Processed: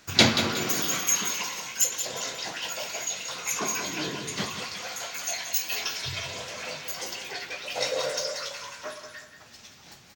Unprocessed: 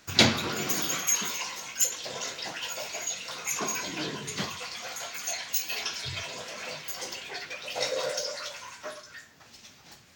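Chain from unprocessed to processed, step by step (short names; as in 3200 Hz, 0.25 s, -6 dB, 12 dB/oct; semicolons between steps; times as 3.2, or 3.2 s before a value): feedback echo 0.181 s, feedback 37%, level -9 dB; gain +1.5 dB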